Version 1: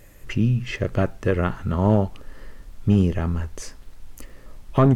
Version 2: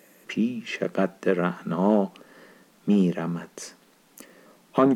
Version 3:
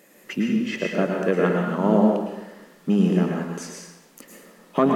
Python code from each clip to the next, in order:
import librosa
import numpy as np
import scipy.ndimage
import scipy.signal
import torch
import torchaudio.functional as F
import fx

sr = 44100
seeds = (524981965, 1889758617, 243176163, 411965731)

y1 = scipy.signal.sosfilt(scipy.signal.ellip(4, 1.0, 40, 170.0, 'highpass', fs=sr, output='sos'), x)
y2 = fx.rev_plate(y1, sr, seeds[0], rt60_s=0.94, hf_ratio=0.8, predelay_ms=95, drr_db=-0.5)